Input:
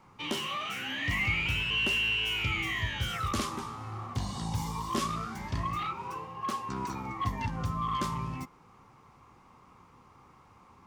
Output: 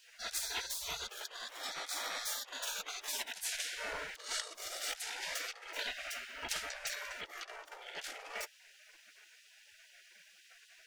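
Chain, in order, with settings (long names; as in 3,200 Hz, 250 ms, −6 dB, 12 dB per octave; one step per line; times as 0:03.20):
tilt shelving filter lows +6.5 dB, about 1,100 Hz
compressor whose output falls as the input rises −33 dBFS, ratio −0.5
gate on every frequency bin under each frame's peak −30 dB weak
level +14.5 dB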